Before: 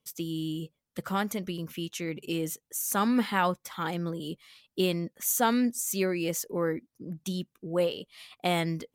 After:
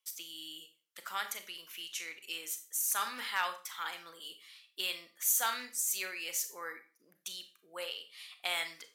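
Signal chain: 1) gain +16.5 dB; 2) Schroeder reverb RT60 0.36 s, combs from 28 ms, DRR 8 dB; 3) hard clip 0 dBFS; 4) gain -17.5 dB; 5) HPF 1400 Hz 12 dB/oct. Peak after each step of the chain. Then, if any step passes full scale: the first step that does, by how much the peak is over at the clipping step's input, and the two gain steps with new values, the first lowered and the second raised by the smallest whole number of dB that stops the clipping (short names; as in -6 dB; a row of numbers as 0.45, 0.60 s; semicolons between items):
+3.5, +4.5, 0.0, -17.5, -17.0 dBFS; step 1, 4.5 dB; step 1 +11.5 dB, step 4 -12.5 dB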